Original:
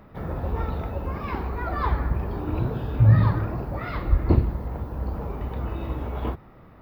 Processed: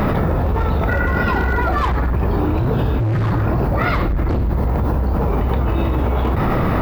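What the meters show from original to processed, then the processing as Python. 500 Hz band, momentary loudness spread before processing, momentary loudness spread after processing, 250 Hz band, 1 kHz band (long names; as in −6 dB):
+11.0 dB, 12 LU, 1 LU, +9.5 dB, +11.0 dB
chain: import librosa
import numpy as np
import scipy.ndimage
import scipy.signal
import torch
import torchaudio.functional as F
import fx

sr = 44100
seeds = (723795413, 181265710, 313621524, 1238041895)

y = fx.spec_repair(x, sr, seeds[0], start_s=0.91, length_s=0.68, low_hz=1100.0, high_hz=2400.0, source='after')
y = np.clip(y, -10.0 ** (-22.0 / 20.0), 10.0 ** (-22.0 / 20.0))
y = fx.env_flatten(y, sr, amount_pct=100)
y = y * 10.0 ** (5.5 / 20.0)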